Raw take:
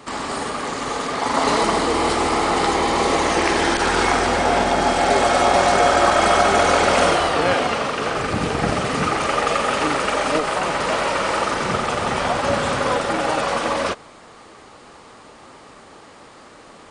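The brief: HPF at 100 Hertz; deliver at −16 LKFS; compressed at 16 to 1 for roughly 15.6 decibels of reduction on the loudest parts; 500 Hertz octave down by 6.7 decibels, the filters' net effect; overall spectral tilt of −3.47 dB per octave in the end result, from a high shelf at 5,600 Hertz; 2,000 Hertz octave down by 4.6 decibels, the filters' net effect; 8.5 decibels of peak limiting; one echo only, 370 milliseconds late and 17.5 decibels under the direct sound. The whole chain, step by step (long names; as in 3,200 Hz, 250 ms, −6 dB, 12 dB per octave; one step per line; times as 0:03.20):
high-pass filter 100 Hz
parametric band 500 Hz −8.5 dB
parametric band 2,000 Hz −5 dB
high-shelf EQ 5,600 Hz −4 dB
downward compressor 16 to 1, threshold −32 dBFS
brickwall limiter −30.5 dBFS
single-tap delay 370 ms −17.5 dB
level +24 dB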